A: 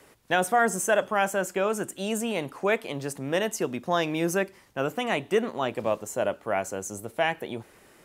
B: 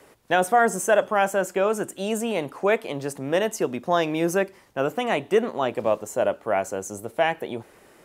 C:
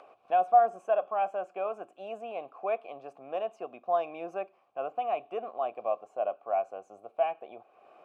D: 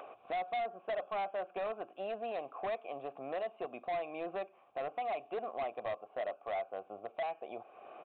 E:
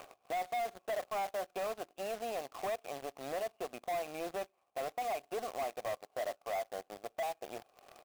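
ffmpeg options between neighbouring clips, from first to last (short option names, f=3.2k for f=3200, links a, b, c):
-af "equalizer=f=570:w=0.56:g=4.5"
-filter_complex "[0:a]asplit=3[a][b][c];[a]bandpass=f=730:t=q:w=8,volume=0dB[d];[b]bandpass=f=1.09k:t=q:w=8,volume=-6dB[e];[c]bandpass=f=2.44k:t=q:w=8,volume=-9dB[f];[d][e][f]amix=inputs=3:normalize=0,acompressor=mode=upward:threshold=-45dB:ratio=2.5,highshelf=f=4.9k:g=-11.5"
-af "acompressor=threshold=-43dB:ratio=2,aresample=8000,asoftclip=type=hard:threshold=-37.5dB,aresample=44100,volume=5dB"
-af "acrusher=bits=2:mode=log:mix=0:aa=0.000001,aeval=exprs='0.0266*(cos(1*acos(clip(val(0)/0.0266,-1,1)))-cos(1*PI/2))+0.00299*(cos(7*acos(clip(val(0)/0.0266,-1,1)))-cos(7*PI/2))':c=same"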